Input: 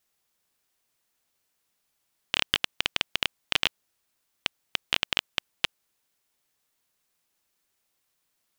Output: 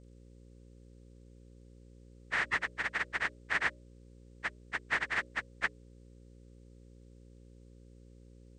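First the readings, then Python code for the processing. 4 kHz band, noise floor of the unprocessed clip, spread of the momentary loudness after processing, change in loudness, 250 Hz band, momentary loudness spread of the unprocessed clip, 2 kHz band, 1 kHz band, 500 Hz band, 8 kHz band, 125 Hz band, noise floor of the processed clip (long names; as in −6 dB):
−19.0 dB, −77 dBFS, 9 LU, −5.5 dB, −3.5 dB, 9 LU, +0.5 dB, −0.5 dB, −3.5 dB, −11.5 dB, −0.5 dB, −56 dBFS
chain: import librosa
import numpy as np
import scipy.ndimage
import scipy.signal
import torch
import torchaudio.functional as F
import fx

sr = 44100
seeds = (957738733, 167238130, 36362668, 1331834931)

y = fx.partial_stretch(x, sr, pct=80)
y = fx.hum_notches(y, sr, base_hz=60, count=10)
y = fx.dmg_buzz(y, sr, base_hz=60.0, harmonics=9, level_db=-53.0, tilt_db=-5, odd_only=False)
y = y * 10.0 ** (-2.5 / 20.0)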